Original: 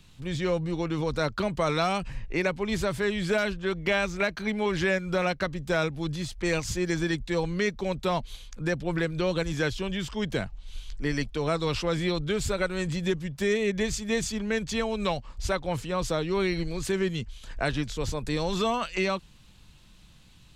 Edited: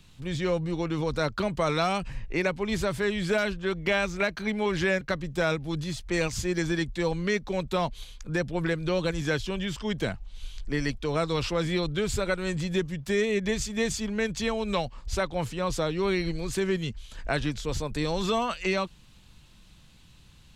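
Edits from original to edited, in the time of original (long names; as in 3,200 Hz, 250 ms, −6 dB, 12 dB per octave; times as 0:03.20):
0:05.01–0:05.33: remove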